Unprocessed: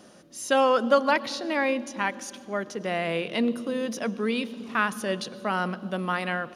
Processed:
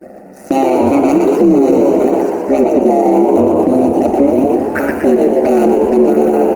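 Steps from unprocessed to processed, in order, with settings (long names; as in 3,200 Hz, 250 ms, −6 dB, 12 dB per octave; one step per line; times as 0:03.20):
running median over 41 samples
noise gate with hold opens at −48 dBFS
comb filter 2.7 ms, depth 67%
downward compressor 12 to 1, threshold −28 dBFS, peak gain reduction 8 dB
high-pass with resonance 340 Hz, resonance Q 3.6
amplitude modulation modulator 140 Hz, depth 90%
phaser with its sweep stopped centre 670 Hz, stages 8
flanger swept by the level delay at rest 2.2 ms, full sweep at −35.5 dBFS
echo with shifted repeats 120 ms, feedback 58%, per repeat +76 Hz, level −5 dB
on a send at −9 dB: convolution reverb RT60 1.0 s, pre-delay 32 ms
on the sum: boost into a limiter +28 dB
level −1 dB
Opus 32 kbit/s 48,000 Hz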